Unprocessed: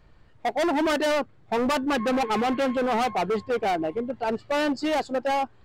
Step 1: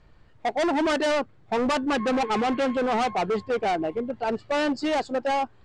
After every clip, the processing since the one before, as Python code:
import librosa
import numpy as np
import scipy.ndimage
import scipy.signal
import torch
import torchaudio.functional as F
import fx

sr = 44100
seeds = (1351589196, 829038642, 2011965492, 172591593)

y = scipy.signal.sosfilt(scipy.signal.butter(4, 9000.0, 'lowpass', fs=sr, output='sos'), x)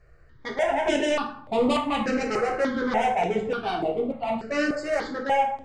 y = fx.rev_plate(x, sr, seeds[0], rt60_s=0.66, hf_ratio=0.6, predelay_ms=0, drr_db=-0.5)
y = fx.phaser_held(y, sr, hz=3.4, low_hz=920.0, high_hz=5800.0)